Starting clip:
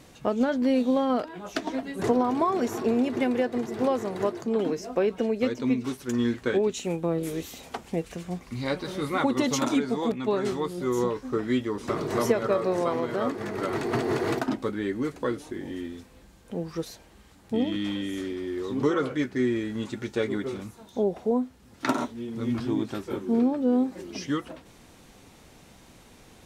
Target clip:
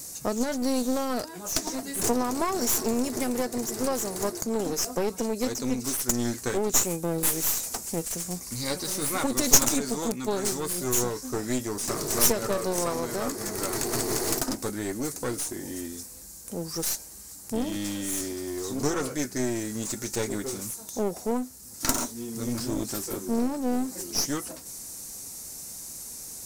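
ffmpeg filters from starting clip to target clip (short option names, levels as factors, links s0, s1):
-af "aexciter=amount=11.9:drive=6.5:freq=4900,aeval=exprs='clip(val(0),-1,0.0299)':c=same,volume=0.891"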